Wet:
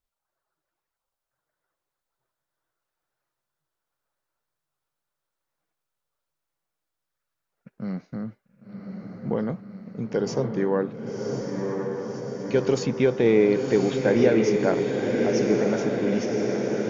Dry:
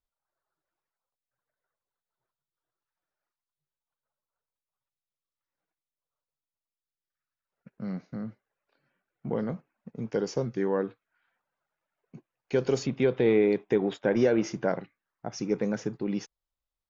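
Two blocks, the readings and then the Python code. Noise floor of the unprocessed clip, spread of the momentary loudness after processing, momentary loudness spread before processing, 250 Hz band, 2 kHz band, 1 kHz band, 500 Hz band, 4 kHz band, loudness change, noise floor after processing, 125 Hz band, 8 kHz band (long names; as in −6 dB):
below −85 dBFS, 16 LU, 16 LU, +5.5 dB, +6.0 dB, +6.0 dB, +5.5 dB, +6.0 dB, +4.5 dB, below −85 dBFS, +6.0 dB, can't be measured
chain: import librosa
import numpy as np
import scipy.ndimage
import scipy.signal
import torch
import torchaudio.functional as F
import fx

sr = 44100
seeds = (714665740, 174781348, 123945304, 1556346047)

y = fx.echo_diffused(x, sr, ms=1075, feedback_pct=71, wet_db=-3.5)
y = y * 10.0 ** (3.5 / 20.0)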